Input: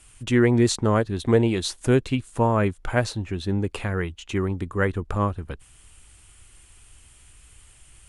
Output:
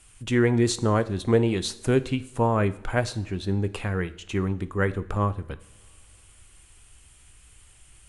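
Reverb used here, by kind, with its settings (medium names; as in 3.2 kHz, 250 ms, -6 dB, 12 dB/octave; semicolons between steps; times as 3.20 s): two-slope reverb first 0.57 s, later 3.3 s, from -22 dB, DRR 12.5 dB; trim -2 dB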